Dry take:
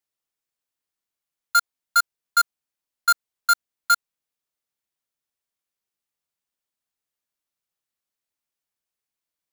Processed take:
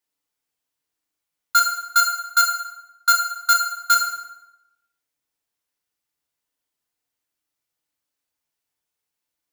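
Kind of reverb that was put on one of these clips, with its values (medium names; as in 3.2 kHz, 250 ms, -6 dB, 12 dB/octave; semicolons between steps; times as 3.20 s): FDN reverb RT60 0.92 s, low-frequency decay 0.85×, high-frequency decay 0.75×, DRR 0 dB; trim +1.5 dB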